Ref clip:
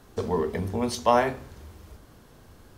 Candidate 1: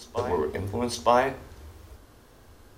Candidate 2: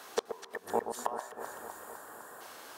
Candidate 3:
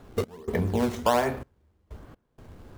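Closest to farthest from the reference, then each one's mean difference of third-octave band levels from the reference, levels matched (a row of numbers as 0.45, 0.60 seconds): 1, 3, 2; 1.5, 7.5, 13.0 decibels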